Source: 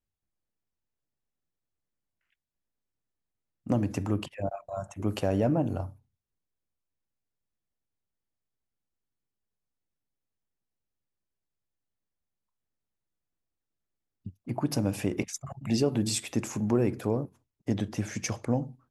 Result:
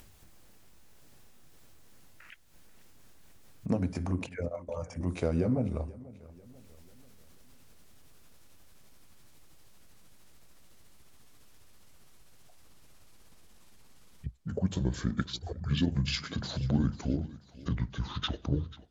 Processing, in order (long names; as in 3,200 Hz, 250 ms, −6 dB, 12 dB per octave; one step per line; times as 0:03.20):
pitch glide at a constant tempo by −10 semitones starting unshifted
upward compression, threshold −29 dBFS
feedback echo with a swinging delay time 489 ms, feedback 46%, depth 57 cents, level −19.5 dB
level −1 dB